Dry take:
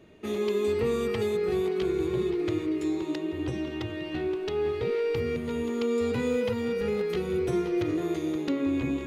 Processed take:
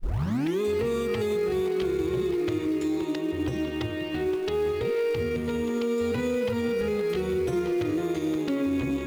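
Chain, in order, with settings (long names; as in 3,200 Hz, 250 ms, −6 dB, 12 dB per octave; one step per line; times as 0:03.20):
turntable start at the beginning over 0.61 s
in parallel at −6.5 dB: floating-point word with a short mantissa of 2 bits
on the sum: brickwall limiter −19.5 dBFS, peak gain reduction 5 dB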